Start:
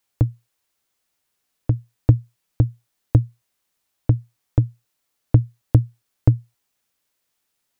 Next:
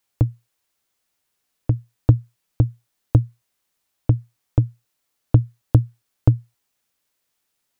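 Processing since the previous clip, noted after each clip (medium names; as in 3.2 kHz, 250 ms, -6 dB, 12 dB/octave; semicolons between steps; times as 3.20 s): dynamic bell 1.4 kHz, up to +5 dB, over -46 dBFS, Q 1.3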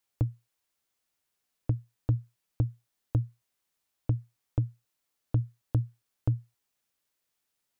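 peak limiter -9.5 dBFS, peak gain reduction 8 dB; trim -6.5 dB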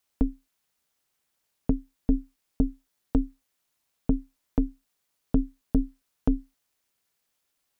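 ring modulator 150 Hz; trim +7 dB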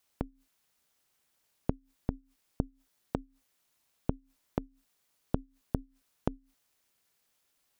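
inverted gate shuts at -24 dBFS, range -24 dB; trim +2 dB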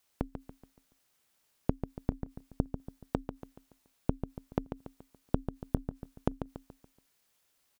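feedback delay 142 ms, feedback 41%, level -8.5 dB; trim +1 dB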